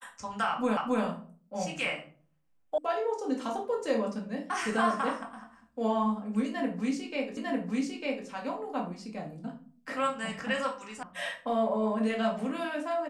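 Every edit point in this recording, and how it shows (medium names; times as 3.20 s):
0.77 s: repeat of the last 0.27 s
2.78 s: sound stops dead
7.37 s: repeat of the last 0.9 s
11.03 s: sound stops dead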